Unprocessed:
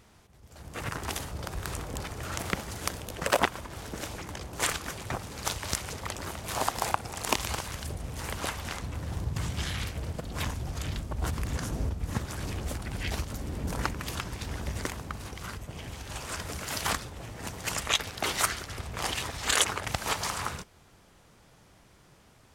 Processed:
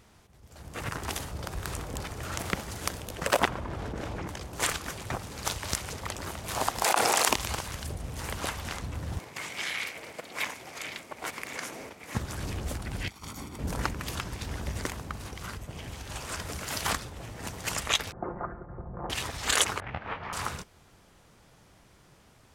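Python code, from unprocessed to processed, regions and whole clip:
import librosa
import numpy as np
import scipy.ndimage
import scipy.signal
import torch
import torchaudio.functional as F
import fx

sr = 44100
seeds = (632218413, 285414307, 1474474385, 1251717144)

y = fx.chain(x, sr, fx.lowpass(hz=1200.0, slope=6),
    fx.env_flatten(amount_pct=100), at=(3.48, 4.28))
y = fx.chain(y, sr, fx.highpass(hz=420.0, slope=12),
    fx.env_flatten(amount_pct=100), at=(6.84, 7.29))
y = fx.chain(y, sr, fx.highpass(hz=410.0, slope=12),
    fx.peak_eq(hz=2200.0, db=11.0, octaves=0.41), at=(9.19, 12.15))
y = fx.chain(y, sr, fx.highpass(hz=310.0, slope=6),
    fx.comb(ms=0.9, depth=0.56),
    fx.over_compress(threshold_db=-42.0, ratio=-0.5), at=(13.08, 13.59))
y = fx.chain(y, sr, fx.bessel_lowpass(hz=760.0, order=8),
    fx.comb(ms=5.7, depth=0.57), at=(18.12, 19.1))
y = fx.chain(y, sr, fx.lowpass(hz=2500.0, slope=24),
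    fx.detune_double(cents=57), at=(19.8, 20.33))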